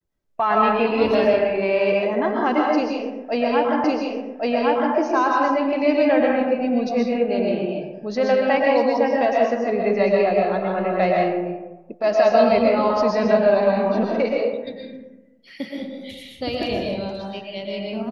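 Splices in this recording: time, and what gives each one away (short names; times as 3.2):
3.84 repeat of the last 1.11 s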